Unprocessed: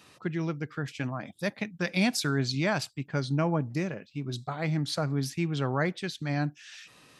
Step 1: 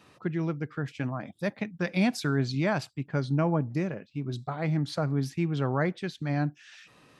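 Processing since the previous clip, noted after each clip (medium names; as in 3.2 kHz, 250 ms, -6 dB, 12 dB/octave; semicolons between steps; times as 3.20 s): treble shelf 2.6 kHz -10 dB; trim +1.5 dB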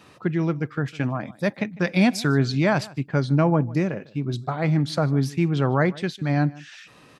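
echo from a far wall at 26 m, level -21 dB; trim +6.5 dB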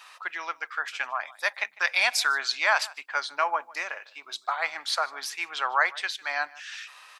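high-pass 910 Hz 24 dB/octave; trim +5 dB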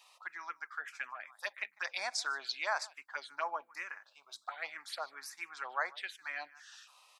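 touch-sensitive phaser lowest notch 240 Hz, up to 3 kHz, full sweep at -20.5 dBFS; trim -8.5 dB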